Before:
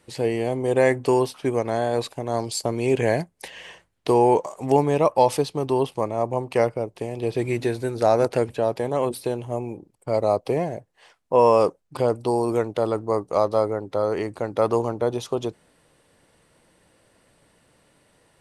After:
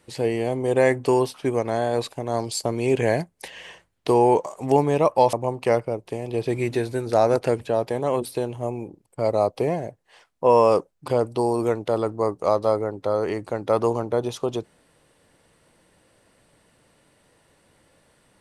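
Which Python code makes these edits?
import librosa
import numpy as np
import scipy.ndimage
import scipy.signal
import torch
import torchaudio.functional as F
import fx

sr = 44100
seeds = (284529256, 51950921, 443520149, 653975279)

y = fx.edit(x, sr, fx.cut(start_s=5.33, length_s=0.89), tone=tone)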